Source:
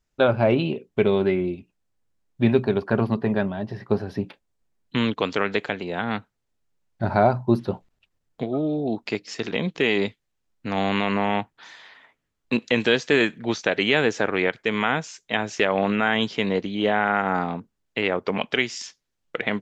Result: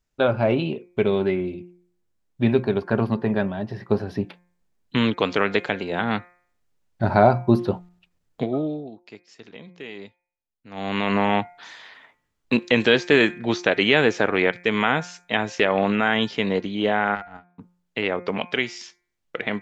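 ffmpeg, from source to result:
ffmpeg -i in.wav -filter_complex "[0:a]asplit=3[link_01][link_02][link_03];[link_01]afade=type=out:start_time=17.14:duration=0.02[link_04];[link_02]agate=range=-49dB:threshold=-21dB:ratio=16:release=100:detection=peak,afade=type=in:start_time=17.14:duration=0.02,afade=type=out:start_time=17.58:duration=0.02[link_05];[link_03]afade=type=in:start_time=17.58:duration=0.02[link_06];[link_04][link_05][link_06]amix=inputs=3:normalize=0,asplit=3[link_07][link_08][link_09];[link_07]atrim=end=8.91,asetpts=PTS-STARTPTS,afade=type=out:start_time=8.44:duration=0.47:silence=0.112202[link_10];[link_08]atrim=start=8.91:end=10.7,asetpts=PTS-STARTPTS,volume=-19dB[link_11];[link_09]atrim=start=10.7,asetpts=PTS-STARTPTS,afade=type=in:duration=0.47:silence=0.112202[link_12];[link_10][link_11][link_12]concat=n=3:v=0:a=1,acrossover=split=5900[link_13][link_14];[link_14]acompressor=threshold=-52dB:ratio=4:attack=1:release=60[link_15];[link_13][link_15]amix=inputs=2:normalize=0,bandreject=frequency=177.1:width_type=h:width=4,bandreject=frequency=354.2:width_type=h:width=4,bandreject=frequency=531.3:width_type=h:width=4,bandreject=frequency=708.4:width_type=h:width=4,bandreject=frequency=885.5:width_type=h:width=4,bandreject=frequency=1062.6:width_type=h:width=4,bandreject=frequency=1239.7:width_type=h:width=4,bandreject=frequency=1416.8:width_type=h:width=4,bandreject=frequency=1593.9:width_type=h:width=4,bandreject=frequency=1771:width_type=h:width=4,bandreject=frequency=1948.1:width_type=h:width=4,bandreject=frequency=2125.2:width_type=h:width=4,bandreject=frequency=2302.3:width_type=h:width=4,bandreject=frequency=2479.4:width_type=h:width=4,dynaudnorm=framelen=480:gausssize=17:maxgain=11.5dB,volume=-1dB" out.wav

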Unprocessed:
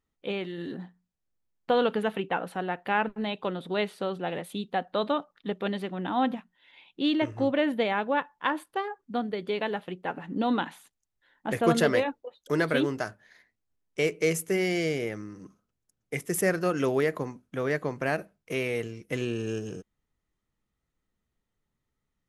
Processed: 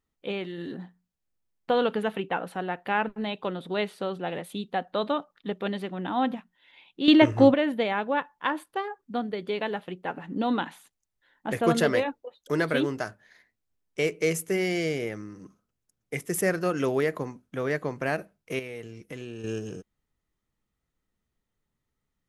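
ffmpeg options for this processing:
ffmpeg -i in.wav -filter_complex "[0:a]asettb=1/sr,asplit=3[link_01][link_02][link_03];[link_01]atrim=end=18.594[link_04];[link_02]atrim=start=18.59:end=19.44,asetpts=PTS-STARTPTS,afade=type=in:duration=0.004:curve=qsin,afade=type=out:start_time=0.846:duration=0.004:curve=qsin,acompressor=threshold=-38dB:ratio=2.5:attack=3.2:release=140:knee=1:detection=peak[link_05];[link_03]atrim=start=19.436[link_06];[link_04][link_05]acrossfade=duration=0.004:curve1=hsin:curve2=qsin[link_07];[link_07][link_06]acrossfade=duration=0.004:curve1=qsin:curve2=hsin,asplit=3[link_08][link_09][link_10];[link_08]atrim=end=7.082[link_11];[link_09]atrim=start=7.078:end=7.542,asetpts=PTS-STARTPTS,volume=9.5dB[link_12];[link_10]atrim=start=7.538[link_13];[link_11][link_12]acrossfade=duration=0.004:curve1=hsin:curve2=hsin[link_14];[link_14][link_13]acrossfade=duration=0.004:curve1=hsin:curve2=hsin" out.wav

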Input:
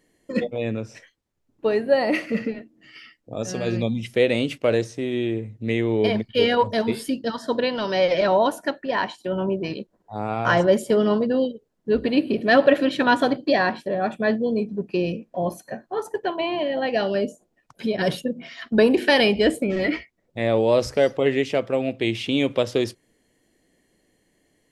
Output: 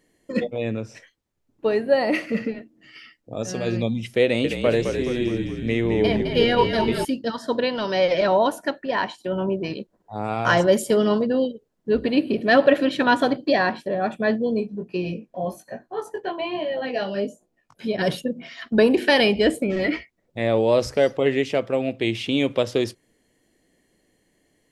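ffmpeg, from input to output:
ffmpeg -i in.wav -filter_complex "[0:a]asettb=1/sr,asplit=3[link_01][link_02][link_03];[link_01]atrim=end=4.234[link_04];[link_02]atrim=start=4.23:end=7.05,asetpts=PTS-STARTPTS,afade=type=in:duration=0.004:curve=qsin,afade=type=out:start_time=2.816:duration=0.004:curve=qsin,asplit=9[link_05][link_06][link_07][link_08][link_09][link_10][link_11][link_12][link_13];[link_06]adelay=211,afreqshift=-44,volume=-6.5dB[link_14];[link_07]adelay=422,afreqshift=-88,volume=-11.1dB[link_15];[link_08]adelay=633,afreqshift=-132,volume=-15.7dB[link_16];[link_09]adelay=844,afreqshift=-176,volume=-20.2dB[link_17];[link_10]adelay=1055,afreqshift=-220,volume=-24.8dB[link_18];[link_11]adelay=1266,afreqshift=-264,volume=-29.4dB[link_19];[link_12]adelay=1477,afreqshift=-308,volume=-34dB[link_20];[link_13]adelay=1688,afreqshift=-352,volume=-38.6dB[link_21];[link_05][link_14][link_15][link_16][link_17][link_18][link_19][link_20][link_21]amix=inputs=9:normalize=0,atrim=end_sample=124362[link_22];[link_03]atrim=start=7.046[link_23];[link_04][link_22]acrossfade=duration=0.004:curve1=hsin:curve2=qsin[link_24];[link_24][link_23]acrossfade=duration=0.004:curve1=qsin:curve2=hsin,asettb=1/sr,asplit=3[link_25][link_26][link_27];[link_25]atrim=end=10.244[link_28];[link_26]atrim=start=10.24:end=11.22,asetpts=PTS-STARTPTS,afade=type=in:duration=0.004:curve=qsin,afade=type=out:start_time=0.976:duration=0.004:curve=qsin,highshelf=frequency=4000:gain=8[link_29];[link_27]atrim=start=11.216[link_30];[link_28][link_29]acrossfade=duration=0.004:curve1=hsin:curve2=qsin[link_31];[link_31][link_30]acrossfade=duration=0.004:curve1=qsin:curve2=hsin,asplit=3[link_32][link_33][link_34];[link_32]afade=type=out:start_time=14.61:duration=0.02[link_35];[link_33]flanger=delay=16:depth=5.5:speed=1.2,afade=type=in:start_time=14.61:duration=0.02,afade=type=out:start_time=17.88:duration=0.02[link_36];[link_34]afade=type=in:start_time=17.88:duration=0.02[link_37];[link_35][link_36][link_37]amix=inputs=3:normalize=0" out.wav

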